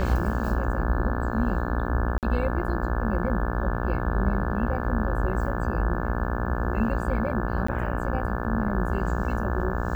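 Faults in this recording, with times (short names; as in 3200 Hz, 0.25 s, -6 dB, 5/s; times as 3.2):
buzz 60 Hz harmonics 29 -30 dBFS
2.18–2.23 gap 48 ms
7.67–7.68 gap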